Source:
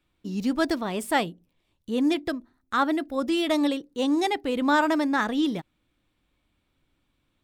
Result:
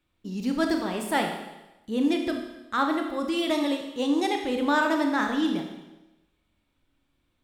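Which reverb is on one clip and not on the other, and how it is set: Schroeder reverb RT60 1 s, combs from 25 ms, DRR 3 dB; trim -2.5 dB

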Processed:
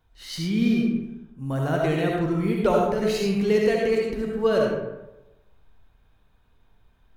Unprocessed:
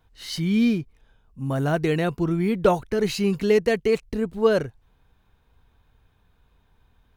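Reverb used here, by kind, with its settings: algorithmic reverb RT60 1 s, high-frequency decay 0.55×, pre-delay 30 ms, DRR -1.5 dB; trim -4 dB

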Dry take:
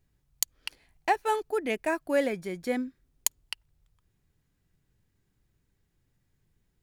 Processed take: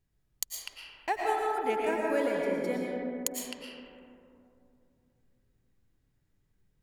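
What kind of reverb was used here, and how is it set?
algorithmic reverb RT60 2.8 s, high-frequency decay 0.3×, pre-delay 75 ms, DRR -2.5 dB; trim -6 dB

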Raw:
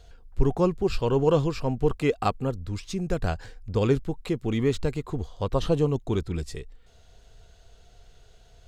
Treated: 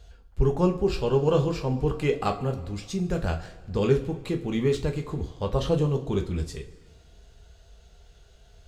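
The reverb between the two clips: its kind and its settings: two-slope reverb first 0.28 s, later 1.8 s, from -18 dB, DRR 3 dB; trim -2 dB

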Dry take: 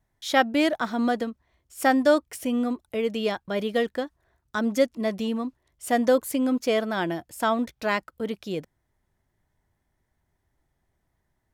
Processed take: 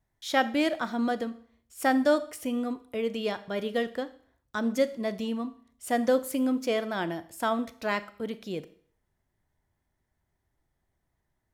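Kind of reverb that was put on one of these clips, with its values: Schroeder reverb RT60 0.52 s, combs from 27 ms, DRR 13.5 dB; trim -4 dB

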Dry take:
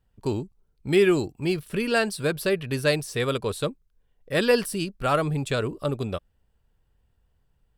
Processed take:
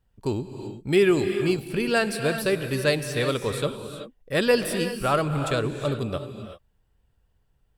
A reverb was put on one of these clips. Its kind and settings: gated-style reverb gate 410 ms rising, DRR 7.5 dB

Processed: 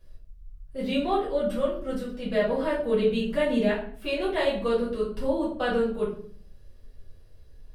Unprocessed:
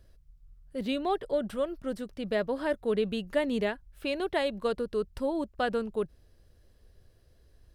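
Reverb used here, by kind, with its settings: simulated room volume 58 m³, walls mixed, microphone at 1.8 m; trim -5.5 dB

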